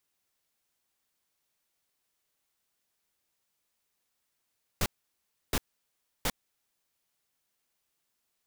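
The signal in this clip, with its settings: noise bursts pink, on 0.05 s, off 0.67 s, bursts 3, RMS -27.5 dBFS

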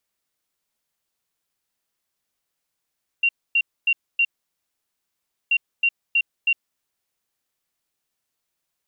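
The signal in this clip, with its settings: beep pattern sine 2760 Hz, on 0.06 s, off 0.26 s, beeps 4, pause 1.26 s, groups 2, -15 dBFS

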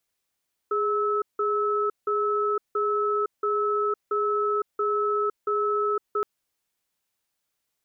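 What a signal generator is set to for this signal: cadence 415 Hz, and 1300 Hz, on 0.51 s, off 0.17 s, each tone -24.5 dBFS 5.52 s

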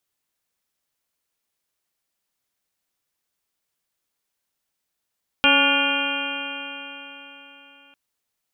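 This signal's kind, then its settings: stretched partials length 2.50 s, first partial 277 Hz, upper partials -2/-0.5/-3.5/3.5/-7.5/-14/4.5/5/3 dB, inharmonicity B 0.0031, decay 3.89 s, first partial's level -23 dB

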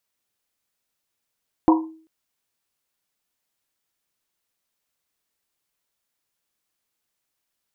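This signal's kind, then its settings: Risset drum length 0.39 s, pitch 320 Hz, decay 0.48 s, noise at 960 Hz, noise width 180 Hz, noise 35%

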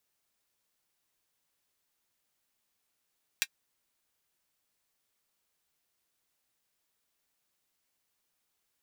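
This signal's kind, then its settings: closed hi-hat, high-pass 2000 Hz, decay 0.06 s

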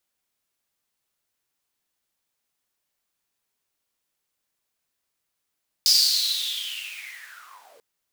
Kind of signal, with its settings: swept filtered noise pink, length 1.94 s highpass, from 5000 Hz, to 440 Hz, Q 10, linear, gain ramp -38 dB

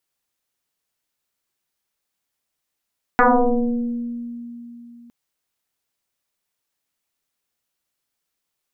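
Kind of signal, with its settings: FM tone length 1.91 s, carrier 237 Hz, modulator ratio 1.04, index 6.4, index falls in 1.48 s exponential, decay 3.46 s, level -9.5 dB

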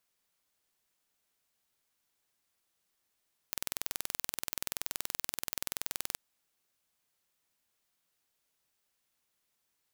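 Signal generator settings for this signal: pulse train 21/s, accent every 0, -6.5 dBFS 2.65 s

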